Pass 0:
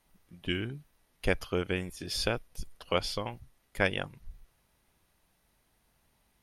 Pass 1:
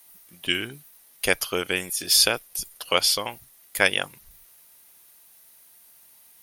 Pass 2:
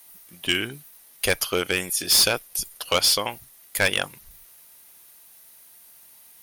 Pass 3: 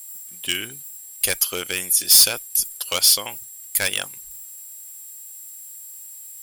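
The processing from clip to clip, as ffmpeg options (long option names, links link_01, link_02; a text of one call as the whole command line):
ffmpeg -i in.wav -af "aemphasis=mode=production:type=riaa,volume=7dB" out.wav
ffmpeg -i in.wav -af "volume=16dB,asoftclip=hard,volume=-16dB,volume=3dB" out.wav
ffmpeg -i in.wav -af "crystalizer=i=3.5:c=0,aeval=exprs='val(0)+0.02*sin(2*PI*7600*n/s)':channel_layout=same,volume=-6.5dB" out.wav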